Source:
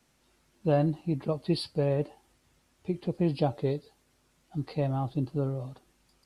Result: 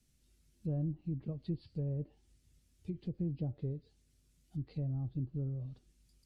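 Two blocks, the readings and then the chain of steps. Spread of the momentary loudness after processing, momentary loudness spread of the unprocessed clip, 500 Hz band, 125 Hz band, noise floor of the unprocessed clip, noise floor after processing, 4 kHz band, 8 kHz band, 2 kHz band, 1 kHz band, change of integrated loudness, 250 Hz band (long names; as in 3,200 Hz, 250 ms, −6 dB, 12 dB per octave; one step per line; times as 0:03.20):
9 LU, 11 LU, −18.0 dB, −5.5 dB, −69 dBFS, −72 dBFS, below −20 dB, can't be measured, below −20 dB, below −25 dB, −9.0 dB, −9.5 dB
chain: guitar amp tone stack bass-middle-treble 10-0-1
in parallel at 0 dB: downward compressor, threshold −51 dBFS, peak gain reduction 12 dB
on the sum: treble cut that deepens with the level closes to 800 Hz, closed at −37.5 dBFS
high-shelf EQ 4,600 Hz +7 dB
level +5 dB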